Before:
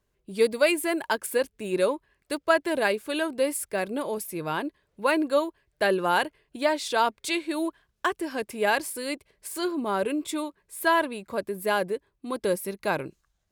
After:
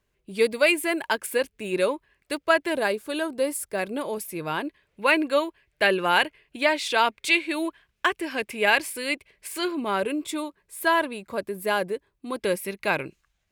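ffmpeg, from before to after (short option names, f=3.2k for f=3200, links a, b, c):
-af "asetnsamples=n=441:p=0,asendcmd='2.76 equalizer g -2;3.79 equalizer g 4;4.67 equalizer g 11;10 equalizer g 3;12.37 equalizer g 10',equalizer=f=2.4k:t=o:w=1:g=6"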